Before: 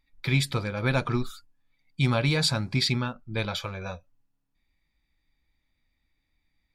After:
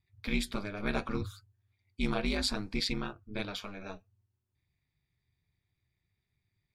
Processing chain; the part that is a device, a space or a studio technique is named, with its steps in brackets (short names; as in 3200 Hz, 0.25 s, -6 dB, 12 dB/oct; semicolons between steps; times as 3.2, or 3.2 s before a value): alien voice (ring modulator 100 Hz; flange 0.69 Hz, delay 2.3 ms, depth 3.9 ms, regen -83%)